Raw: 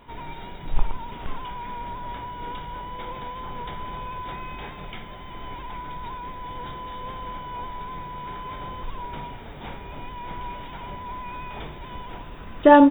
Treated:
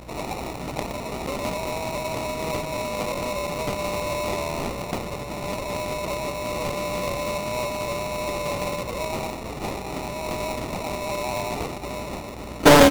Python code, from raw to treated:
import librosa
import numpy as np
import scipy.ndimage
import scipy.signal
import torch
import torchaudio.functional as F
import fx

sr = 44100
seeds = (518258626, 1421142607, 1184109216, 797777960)

p1 = scipy.signal.sosfilt(scipy.signal.butter(2, 190.0, 'highpass', fs=sr, output='sos'), x)
p2 = fx.high_shelf(p1, sr, hz=2100.0, db=10.5)
p3 = fx.notch(p2, sr, hz=920.0, q=7.9)
p4 = fx.rider(p3, sr, range_db=4, speed_s=2.0)
p5 = p3 + (p4 * 10.0 ** (-1.0 / 20.0))
p6 = 10.0 ** (-6.5 / 20.0) * np.tanh(p5 / 10.0 ** (-6.5 / 20.0))
p7 = fx.add_hum(p6, sr, base_hz=60, snr_db=18)
p8 = fx.sample_hold(p7, sr, seeds[0], rate_hz=1600.0, jitter_pct=0)
y = fx.doppler_dist(p8, sr, depth_ms=0.88)